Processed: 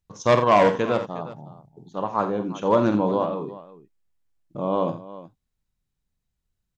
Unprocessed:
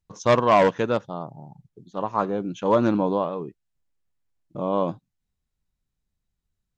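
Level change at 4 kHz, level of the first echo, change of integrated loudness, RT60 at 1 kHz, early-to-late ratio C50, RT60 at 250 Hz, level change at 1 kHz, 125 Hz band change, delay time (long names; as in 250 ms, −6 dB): +0.5 dB, −9.5 dB, +0.5 dB, no reverb audible, no reverb audible, no reverb audible, +1.0 dB, +0.5 dB, 48 ms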